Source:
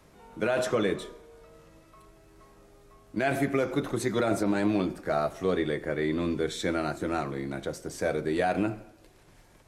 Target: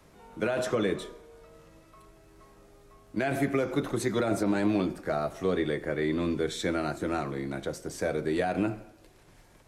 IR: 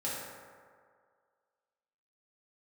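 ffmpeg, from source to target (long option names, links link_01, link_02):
-filter_complex "[0:a]acrossover=split=400[link_01][link_02];[link_02]acompressor=threshold=-27dB:ratio=6[link_03];[link_01][link_03]amix=inputs=2:normalize=0"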